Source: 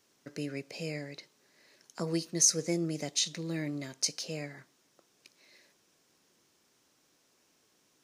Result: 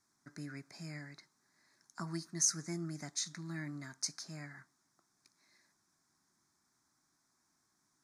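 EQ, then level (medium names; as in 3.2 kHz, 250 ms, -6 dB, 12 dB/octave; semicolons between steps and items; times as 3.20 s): low-pass 11 kHz 12 dB/octave; dynamic bell 1.5 kHz, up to +7 dB, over -58 dBFS, Q 1.6; static phaser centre 1.2 kHz, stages 4; -4.0 dB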